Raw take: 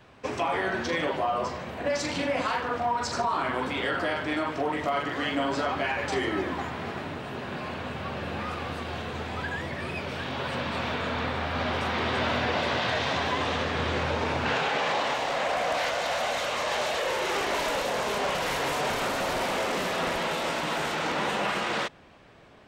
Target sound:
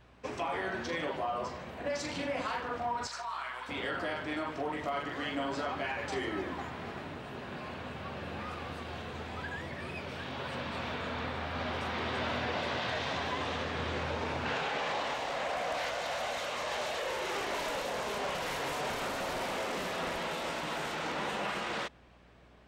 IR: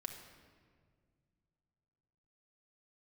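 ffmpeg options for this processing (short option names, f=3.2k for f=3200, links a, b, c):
-filter_complex "[0:a]asettb=1/sr,asplit=3[a][b][c];[a]atrim=end=3.074[d];[b]atrim=start=3.07:end=3.69,asetpts=PTS-STARTPTS,afade=t=in:d=0.004:c=qsin,afade=t=out:st=0.616:d=0.004:c=qsin,highpass=1.1k[e];[c]atrim=start=3.686[f];[d][e]acrossfade=d=0.004:c1=hsin:c2=qsin[g];[g][f]acrossfade=d=0.004:c1=qsin:c2=hsin,aeval=exprs='val(0)+0.00178*(sin(2*PI*60*n/s)+sin(2*PI*2*60*n/s)/2+sin(2*PI*3*60*n/s)/3+sin(2*PI*4*60*n/s)/4+sin(2*PI*5*60*n/s)/5)':c=same,volume=-7dB"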